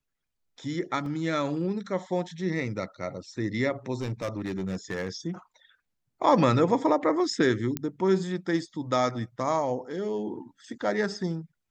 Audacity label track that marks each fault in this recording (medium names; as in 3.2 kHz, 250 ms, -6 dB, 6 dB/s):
1.060000	1.060000	dropout 2.6 ms
4.010000	5.150000	clipped -26 dBFS
7.770000	7.770000	pop -13 dBFS